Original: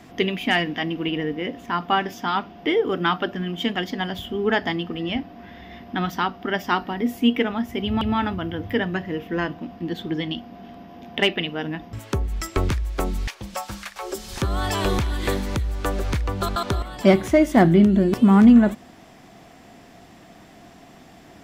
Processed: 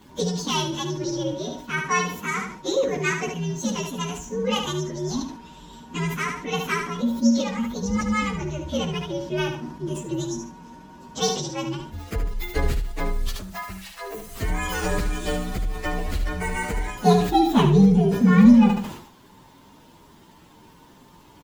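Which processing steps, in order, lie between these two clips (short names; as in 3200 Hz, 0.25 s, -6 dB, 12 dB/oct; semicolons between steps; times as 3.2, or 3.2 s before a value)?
inharmonic rescaling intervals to 128%; feedback echo 73 ms, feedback 24%, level -8 dB; sustainer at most 81 dB/s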